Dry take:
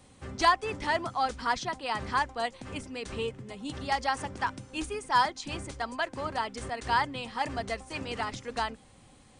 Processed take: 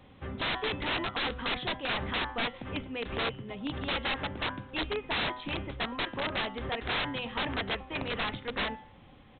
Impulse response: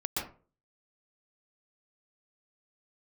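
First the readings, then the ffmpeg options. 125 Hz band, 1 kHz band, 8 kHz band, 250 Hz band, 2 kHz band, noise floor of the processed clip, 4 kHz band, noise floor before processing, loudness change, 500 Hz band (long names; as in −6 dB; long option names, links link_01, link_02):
+1.5 dB, −7.5 dB, below −35 dB, +1.5 dB, +0.5 dB, −55 dBFS, +4.0 dB, −57 dBFS, −1.5 dB, −1.0 dB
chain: -af "bandreject=frequency=124.6:width_type=h:width=4,bandreject=frequency=249.2:width_type=h:width=4,bandreject=frequency=373.8:width_type=h:width=4,bandreject=frequency=498.4:width_type=h:width=4,bandreject=frequency=623:width_type=h:width=4,bandreject=frequency=747.6:width_type=h:width=4,bandreject=frequency=872.2:width_type=h:width=4,bandreject=frequency=996.8:width_type=h:width=4,bandreject=frequency=1121.4:width_type=h:width=4,bandreject=frequency=1246:width_type=h:width=4,bandreject=frequency=1370.6:width_type=h:width=4,bandreject=frequency=1495.2:width_type=h:width=4,bandreject=frequency=1619.8:width_type=h:width=4,bandreject=frequency=1744.4:width_type=h:width=4,bandreject=frequency=1869:width_type=h:width=4,bandreject=frequency=1993.6:width_type=h:width=4,bandreject=frequency=2118.2:width_type=h:width=4,bandreject=frequency=2242.8:width_type=h:width=4,bandreject=frequency=2367.4:width_type=h:width=4,bandreject=frequency=2492:width_type=h:width=4,bandreject=frequency=2616.6:width_type=h:width=4,bandreject=frequency=2741.2:width_type=h:width=4,bandreject=frequency=2865.8:width_type=h:width=4,bandreject=frequency=2990.4:width_type=h:width=4,bandreject=frequency=3115:width_type=h:width=4,bandreject=frequency=3239.6:width_type=h:width=4,bandreject=frequency=3364.2:width_type=h:width=4,bandreject=frequency=3488.8:width_type=h:width=4,bandreject=frequency=3613.4:width_type=h:width=4,bandreject=frequency=3738:width_type=h:width=4,bandreject=frequency=3862.6:width_type=h:width=4,bandreject=frequency=3987.2:width_type=h:width=4,bandreject=frequency=4111.8:width_type=h:width=4,bandreject=frequency=4236.4:width_type=h:width=4,bandreject=frequency=4361:width_type=h:width=4,bandreject=frequency=4485.6:width_type=h:width=4,bandreject=frequency=4610.2:width_type=h:width=4,bandreject=frequency=4734.8:width_type=h:width=4,aresample=8000,aeval=exprs='(mod(25.1*val(0)+1,2)-1)/25.1':channel_layout=same,aresample=44100,volume=2.5dB"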